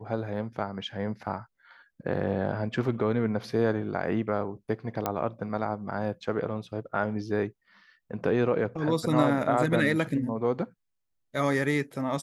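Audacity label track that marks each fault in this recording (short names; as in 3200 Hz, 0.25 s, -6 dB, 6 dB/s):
5.060000	5.060000	pop -13 dBFS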